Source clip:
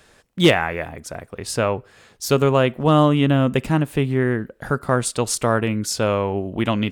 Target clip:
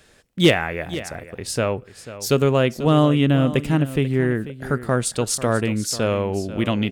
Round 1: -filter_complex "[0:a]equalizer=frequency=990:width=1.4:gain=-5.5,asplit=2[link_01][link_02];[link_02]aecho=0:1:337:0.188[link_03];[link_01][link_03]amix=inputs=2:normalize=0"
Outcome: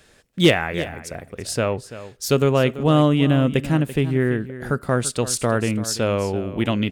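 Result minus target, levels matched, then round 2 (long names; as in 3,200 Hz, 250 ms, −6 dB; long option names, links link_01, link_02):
echo 154 ms early
-filter_complex "[0:a]equalizer=frequency=990:width=1.4:gain=-5.5,asplit=2[link_01][link_02];[link_02]aecho=0:1:491:0.188[link_03];[link_01][link_03]amix=inputs=2:normalize=0"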